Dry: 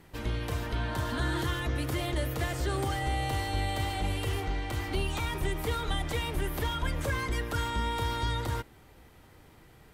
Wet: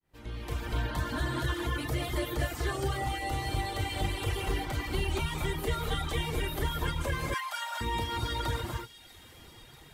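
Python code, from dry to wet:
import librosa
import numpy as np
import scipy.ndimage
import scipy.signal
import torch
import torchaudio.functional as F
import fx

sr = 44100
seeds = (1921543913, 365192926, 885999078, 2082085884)

p1 = fx.fade_in_head(x, sr, length_s=1.23)
p2 = fx.rev_gated(p1, sr, seeds[0], gate_ms=270, shape='rising', drr_db=-0.5)
p3 = fx.rider(p2, sr, range_db=5, speed_s=0.5)
p4 = fx.steep_highpass(p3, sr, hz=580.0, slope=72, at=(7.34, 7.81))
p5 = fx.dereverb_blind(p4, sr, rt60_s=0.89)
p6 = p5 + fx.echo_wet_highpass(p5, sr, ms=643, feedback_pct=70, hz=3000.0, wet_db=-14.0, dry=0)
y = p6 * 10.0 ** (-1.0 / 20.0)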